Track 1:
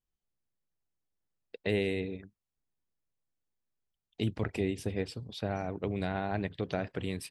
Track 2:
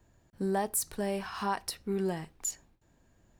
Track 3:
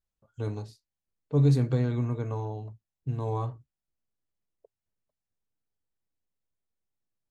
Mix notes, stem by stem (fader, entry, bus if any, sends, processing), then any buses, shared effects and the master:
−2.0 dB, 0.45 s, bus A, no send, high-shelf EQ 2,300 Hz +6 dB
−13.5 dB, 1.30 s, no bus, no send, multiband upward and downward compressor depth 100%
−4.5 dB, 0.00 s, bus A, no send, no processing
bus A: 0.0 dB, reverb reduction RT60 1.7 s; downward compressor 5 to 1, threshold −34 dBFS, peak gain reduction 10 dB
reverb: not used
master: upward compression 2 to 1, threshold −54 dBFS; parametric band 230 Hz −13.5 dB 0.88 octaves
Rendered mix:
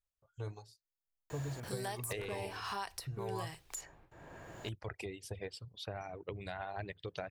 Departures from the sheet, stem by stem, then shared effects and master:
stem 1: missing high-shelf EQ 2,300 Hz +6 dB
stem 2 −13.5 dB → −7.5 dB
master: missing upward compression 2 to 1, threshold −54 dBFS

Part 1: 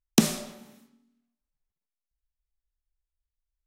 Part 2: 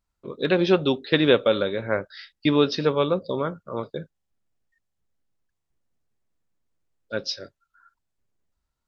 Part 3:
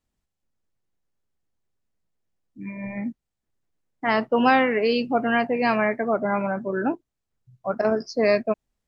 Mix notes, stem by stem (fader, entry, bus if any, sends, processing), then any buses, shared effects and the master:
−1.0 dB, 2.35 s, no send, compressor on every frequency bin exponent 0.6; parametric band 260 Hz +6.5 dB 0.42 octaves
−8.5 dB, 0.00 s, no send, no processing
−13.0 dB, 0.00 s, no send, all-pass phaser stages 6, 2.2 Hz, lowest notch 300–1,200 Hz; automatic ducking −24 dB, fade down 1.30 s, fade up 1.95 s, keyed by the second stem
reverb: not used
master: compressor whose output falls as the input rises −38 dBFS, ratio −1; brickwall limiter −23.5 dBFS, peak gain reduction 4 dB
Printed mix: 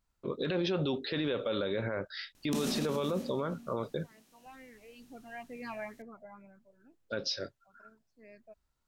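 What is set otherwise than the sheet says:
stem 2 −8.5 dB → +0.5 dB
master: missing compressor whose output falls as the input rises −38 dBFS, ratio −1

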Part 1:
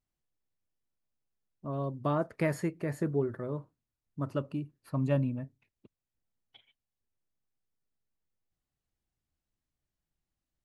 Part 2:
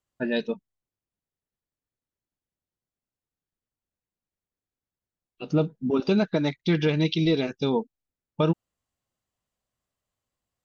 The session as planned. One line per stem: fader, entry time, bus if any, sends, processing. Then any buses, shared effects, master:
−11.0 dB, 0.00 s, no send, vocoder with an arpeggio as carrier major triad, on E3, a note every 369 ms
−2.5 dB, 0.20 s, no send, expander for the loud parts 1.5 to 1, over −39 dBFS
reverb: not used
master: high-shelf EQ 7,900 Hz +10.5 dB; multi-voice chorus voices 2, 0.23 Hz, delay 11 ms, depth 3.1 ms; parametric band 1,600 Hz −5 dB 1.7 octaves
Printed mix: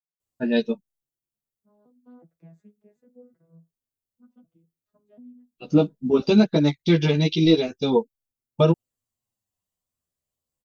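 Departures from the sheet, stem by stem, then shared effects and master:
stem 1 −11.0 dB → −18.0 dB
stem 2 −2.5 dB → +9.0 dB

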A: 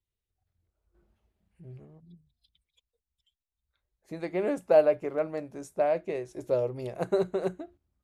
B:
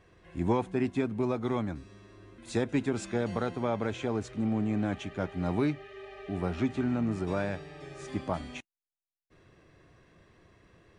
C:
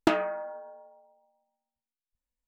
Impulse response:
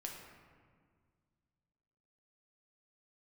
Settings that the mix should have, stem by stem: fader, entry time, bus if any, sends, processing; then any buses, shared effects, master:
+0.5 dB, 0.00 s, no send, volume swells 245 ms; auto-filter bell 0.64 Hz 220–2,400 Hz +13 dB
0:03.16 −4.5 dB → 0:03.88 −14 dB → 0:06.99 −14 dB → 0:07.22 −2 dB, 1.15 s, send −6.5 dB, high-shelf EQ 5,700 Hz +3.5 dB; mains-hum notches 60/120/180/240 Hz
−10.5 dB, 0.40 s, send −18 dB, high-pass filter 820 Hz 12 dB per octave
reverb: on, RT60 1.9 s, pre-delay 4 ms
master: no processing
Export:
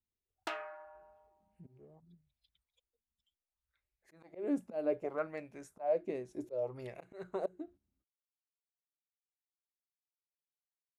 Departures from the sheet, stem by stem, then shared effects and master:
stem A +0.5 dB → −9.5 dB
stem B: muted

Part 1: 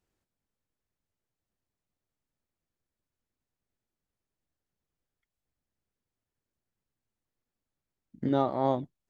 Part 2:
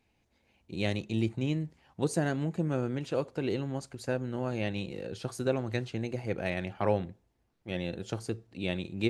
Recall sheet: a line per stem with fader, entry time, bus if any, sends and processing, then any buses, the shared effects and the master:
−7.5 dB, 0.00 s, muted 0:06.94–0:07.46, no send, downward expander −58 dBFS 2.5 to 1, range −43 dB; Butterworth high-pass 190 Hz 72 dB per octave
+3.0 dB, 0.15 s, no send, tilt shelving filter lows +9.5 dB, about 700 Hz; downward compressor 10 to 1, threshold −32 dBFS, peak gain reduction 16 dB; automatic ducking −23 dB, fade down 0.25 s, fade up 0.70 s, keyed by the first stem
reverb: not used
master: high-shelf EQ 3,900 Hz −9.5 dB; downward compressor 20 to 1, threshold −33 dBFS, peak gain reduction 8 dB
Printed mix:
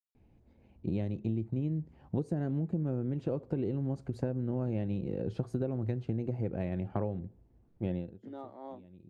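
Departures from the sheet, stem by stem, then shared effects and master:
stem 1 −7.5 dB → −18.0 dB
master: missing downward compressor 20 to 1, threshold −33 dBFS, peak gain reduction 8 dB

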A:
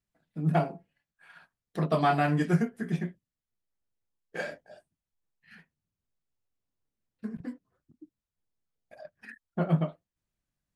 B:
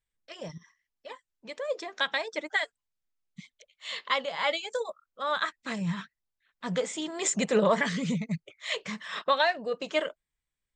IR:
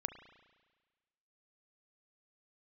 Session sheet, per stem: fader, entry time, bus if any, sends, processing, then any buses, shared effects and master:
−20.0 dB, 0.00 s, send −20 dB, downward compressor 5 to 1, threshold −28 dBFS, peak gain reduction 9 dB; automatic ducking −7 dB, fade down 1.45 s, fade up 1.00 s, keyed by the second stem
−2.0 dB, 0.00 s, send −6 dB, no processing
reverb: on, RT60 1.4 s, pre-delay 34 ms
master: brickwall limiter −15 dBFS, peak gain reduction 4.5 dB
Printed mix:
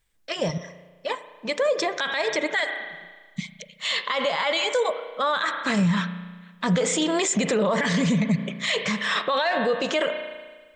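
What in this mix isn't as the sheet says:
stem B −2.0 dB → +7.5 dB
reverb return +10.0 dB

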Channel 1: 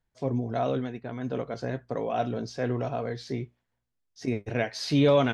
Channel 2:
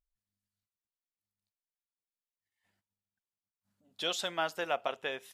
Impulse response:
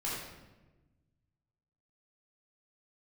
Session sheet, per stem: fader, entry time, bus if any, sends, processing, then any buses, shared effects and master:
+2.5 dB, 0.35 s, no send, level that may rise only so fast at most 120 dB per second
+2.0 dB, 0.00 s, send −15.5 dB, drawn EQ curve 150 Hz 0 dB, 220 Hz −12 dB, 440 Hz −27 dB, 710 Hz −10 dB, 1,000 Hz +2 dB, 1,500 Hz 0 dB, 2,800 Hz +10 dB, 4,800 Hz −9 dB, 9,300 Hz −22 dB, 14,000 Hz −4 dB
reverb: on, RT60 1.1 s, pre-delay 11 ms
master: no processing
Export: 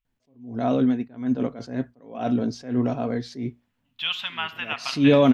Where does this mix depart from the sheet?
stem 1: entry 0.35 s → 0.05 s
master: extra parametric band 250 Hz +11.5 dB 0.43 octaves

